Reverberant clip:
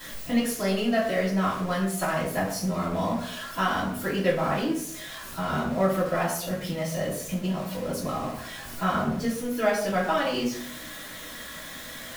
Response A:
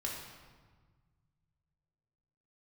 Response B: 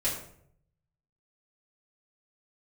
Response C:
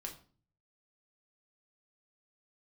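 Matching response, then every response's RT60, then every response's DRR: B; 1.5, 0.65, 0.40 s; -3.0, -9.5, 1.0 dB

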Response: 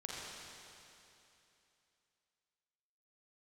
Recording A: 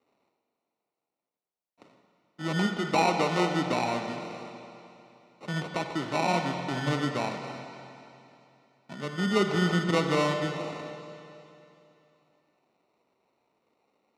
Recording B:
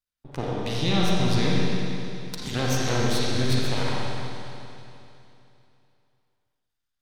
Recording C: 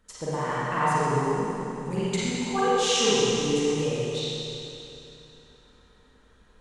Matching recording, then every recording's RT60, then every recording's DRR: B; 2.9, 2.9, 2.9 s; 4.5, -5.0, -10.0 dB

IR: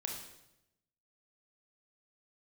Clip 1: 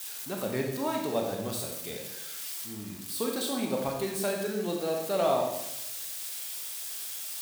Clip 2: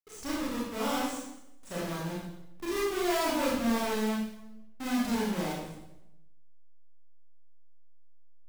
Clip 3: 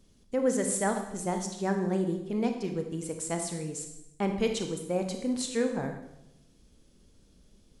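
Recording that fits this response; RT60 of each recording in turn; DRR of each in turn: 1; 0.85, 0.85, 0.85 s; 0.5, -7.5, 4.5 dB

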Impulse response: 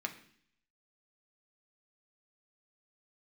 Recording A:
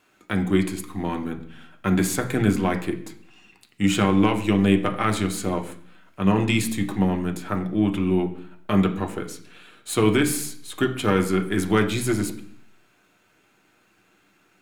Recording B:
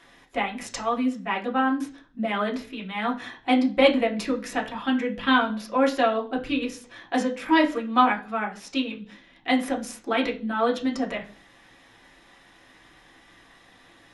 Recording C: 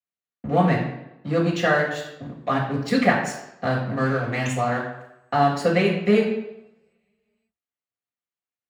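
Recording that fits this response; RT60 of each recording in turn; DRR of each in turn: A; 0.60, 0.40, 0.90 s; 3.5, -2.0, -5.5 dB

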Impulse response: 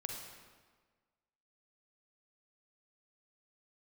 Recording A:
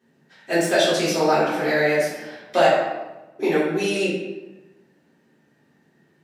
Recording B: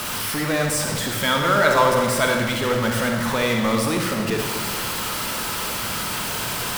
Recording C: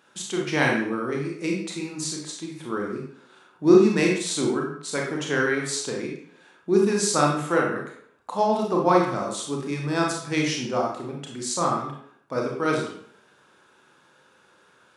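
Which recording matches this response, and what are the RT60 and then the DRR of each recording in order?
B; 1.1, 1.5, 0.65 s; -11.0, 1.5, -1.5 dB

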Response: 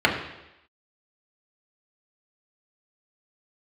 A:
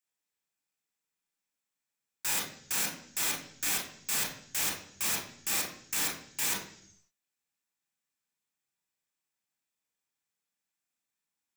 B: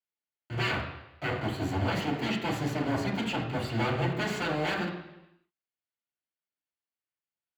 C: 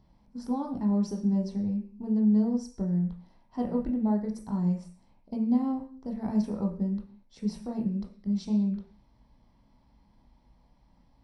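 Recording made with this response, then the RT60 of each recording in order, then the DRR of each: B; 0.65, 0.90, 0.45 s; -1.5, -2.5, 1.5 dB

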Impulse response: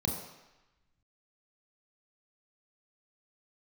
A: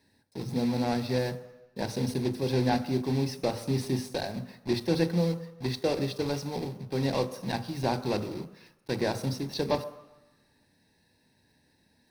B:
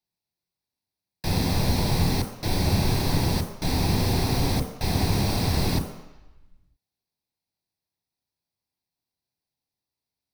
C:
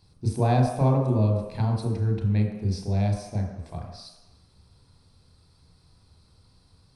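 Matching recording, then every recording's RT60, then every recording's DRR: C; 1.0, 1.0, 1.0 s; 11.5, 5.0, 0.0 dB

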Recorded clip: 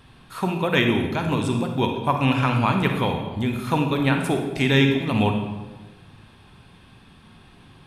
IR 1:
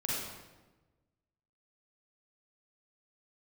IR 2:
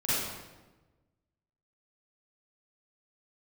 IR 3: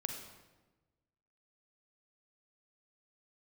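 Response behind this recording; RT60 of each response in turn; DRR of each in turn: 3; 1.2, 1.2, 1.2 s; -6.0, -12.0, 4.0 dB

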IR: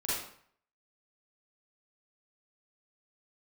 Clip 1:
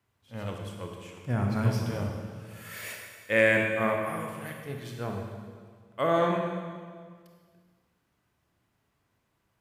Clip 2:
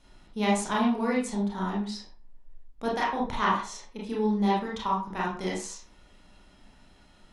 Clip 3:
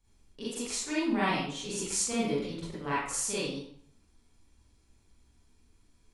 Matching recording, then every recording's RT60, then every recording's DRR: 3; 1.8, 0.40, 0.60 s; 1.0, -5.5, -9.5 dB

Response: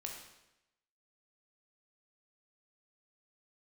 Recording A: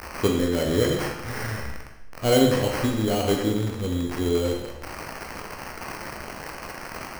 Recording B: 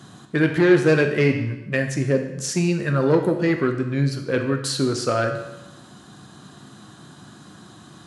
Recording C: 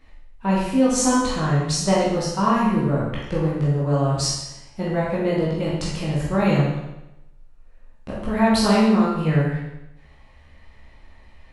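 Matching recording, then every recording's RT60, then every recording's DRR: A; 0.90, 0.90, 0.90 s; 0.0, 4.5, -7.5 dB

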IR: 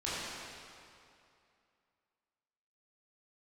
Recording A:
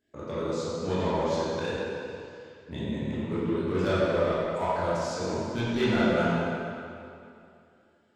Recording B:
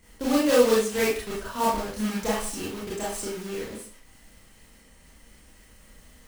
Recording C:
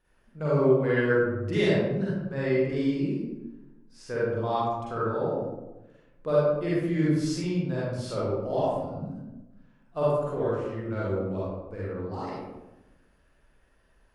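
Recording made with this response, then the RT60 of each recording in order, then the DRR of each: A; 2.5, 0.45, 1.0 s; -10.5, -7.0, -8.5 dB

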